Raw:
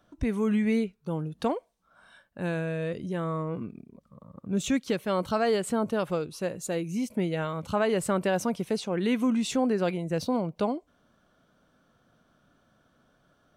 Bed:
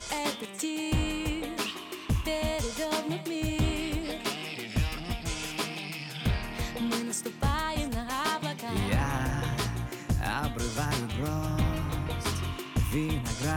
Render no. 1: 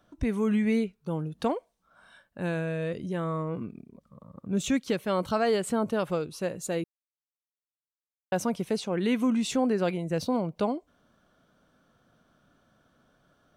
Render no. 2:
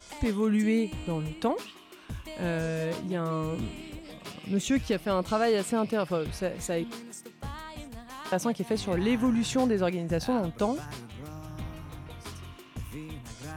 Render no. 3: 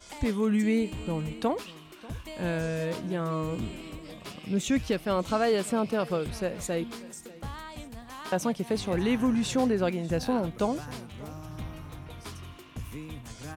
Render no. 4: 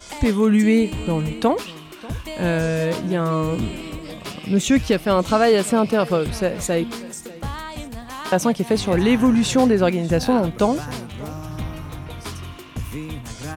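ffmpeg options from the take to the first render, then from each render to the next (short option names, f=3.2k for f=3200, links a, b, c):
-filter_complex "[0:a]asplit=3[a][b][c];[a]atrim=end=6.84,asetpts=PTS-STARTPTS,afade=t=out:st=6.836:d=0.004:c=hsin[d];[b]atrim=start=6.84:end=8.32,asetpts=PTS-STARTPTS,volume=0[e];[c]atrim=start=8.32,asetpts=PTS-STARTPTS,afade=t=in:d=0.004:c=hsin[f];[d][e][f]concat=n=3:v=0:a=1"
-filter_complex "[1:a]volume=-11dB[a];[0:a][a]amix=inputs=2:normalize=0"
-af "aecho=1:1:591:0.1"
-af "volume=9.5dB"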